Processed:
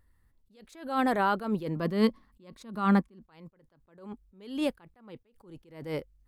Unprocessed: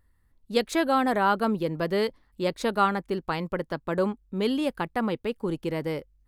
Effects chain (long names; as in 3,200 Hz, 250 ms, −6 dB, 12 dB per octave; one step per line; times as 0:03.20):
brickwall limiter −16.5 dBFS, peak gain reduction 6.5 dB
0:01.76–0:03.28: hollow resonant body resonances 220/1,100 Hz, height 13 dB, ringing for 50 ms
level that may rise only so fast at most 110 dB per second